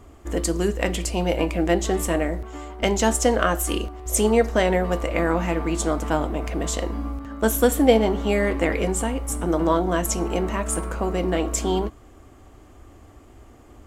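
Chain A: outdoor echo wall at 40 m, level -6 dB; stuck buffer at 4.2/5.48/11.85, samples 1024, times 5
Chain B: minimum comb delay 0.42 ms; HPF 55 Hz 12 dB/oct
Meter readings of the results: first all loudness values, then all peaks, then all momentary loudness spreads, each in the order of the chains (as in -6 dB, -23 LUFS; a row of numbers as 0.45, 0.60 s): -22.0, -23.5 LUFS; -3.0, -5.0 dBFS; 7, 8 LU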